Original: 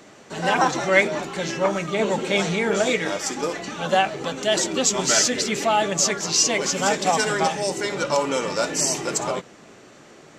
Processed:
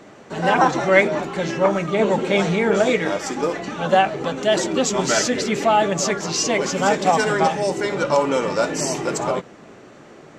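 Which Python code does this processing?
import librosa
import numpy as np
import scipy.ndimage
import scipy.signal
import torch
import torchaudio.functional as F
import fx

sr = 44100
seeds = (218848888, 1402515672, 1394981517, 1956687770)

y = fx.high_shelf(x, sr, hz=2800.0, db=-10.5)
y = F.gain(torch.from_numpy(y), 4.5).numpy()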